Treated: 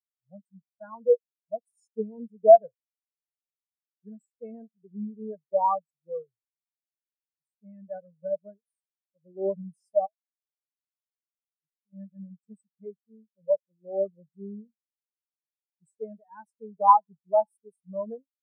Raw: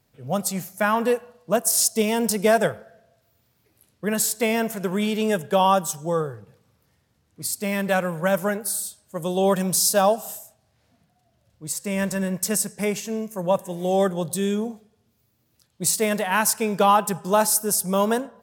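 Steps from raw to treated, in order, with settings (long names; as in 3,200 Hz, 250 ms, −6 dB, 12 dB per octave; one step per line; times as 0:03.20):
0:10.06–0:11.93: downward compressor 10 to 1, threshold −32 dBFS, peak gain reduction 17.5 dB
every bin expanded away from the loudest bin 4 to 1
level +2.5 dB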